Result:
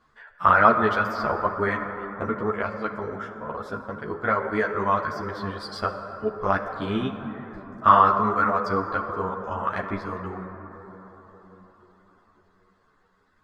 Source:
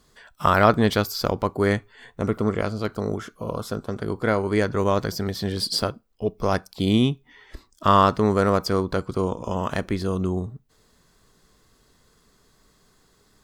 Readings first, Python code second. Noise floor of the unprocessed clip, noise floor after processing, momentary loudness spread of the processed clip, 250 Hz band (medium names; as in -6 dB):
-62 dBFS, -64 dBFS, 17 LU, -6.5 dB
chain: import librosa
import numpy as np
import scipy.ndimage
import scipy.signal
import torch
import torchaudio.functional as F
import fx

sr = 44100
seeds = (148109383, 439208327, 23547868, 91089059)

y = fx.dereverb_blind(x, sr, rt60_s=1.6)
y = fx.lowpass(y, sr, hz=1800.0, slope=6)
y = fx.peak_eq(y, sr, hz=1400.0, db=13.5, octaves=1.9)
y = fx.rev_plate(y, sr, seeds[0], rt60_s=4.7, hf_ratio=0.3, predelay_ms=0, drr_db=6.0)
y = fx.ensemble(y, sr)
y = F.gain(torch.from_numpy(y), -4.0).numpy()